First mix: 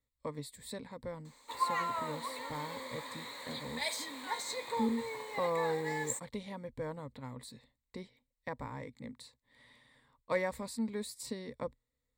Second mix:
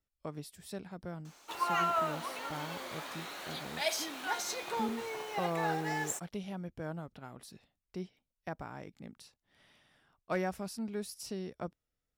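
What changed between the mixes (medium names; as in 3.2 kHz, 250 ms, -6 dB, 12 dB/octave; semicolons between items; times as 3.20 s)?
background +4.5 dB; master: remove rippled EQ curve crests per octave 1, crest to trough 14 dB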